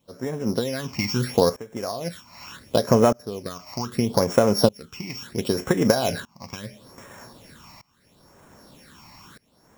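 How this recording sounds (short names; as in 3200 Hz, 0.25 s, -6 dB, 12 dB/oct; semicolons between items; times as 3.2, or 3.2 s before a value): a buzz of ramps at a fixed pitch in blocks of 8 samples; phasing stages 8, 0.74 Hz, lowest notch 450–4400 Hz; a quantiser's noise floor 10-bit, dither none; tremolo saw up 0.64 Hz, depth 95%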